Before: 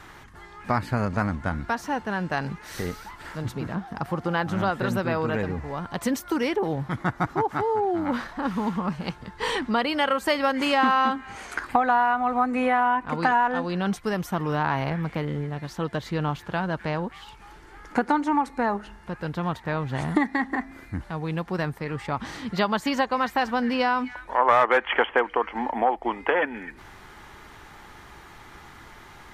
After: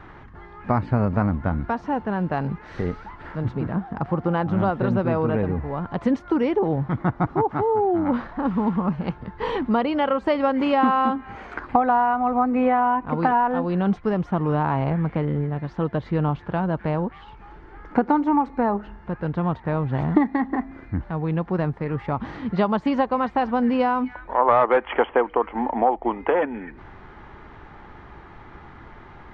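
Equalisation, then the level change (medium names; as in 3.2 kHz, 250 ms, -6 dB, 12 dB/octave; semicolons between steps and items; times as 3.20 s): dynamic bell 1.7 kHz, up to -5 dB, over -38 dBFS, Q 2.1; tape spacing loss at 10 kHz 41 dB; +6.0 dB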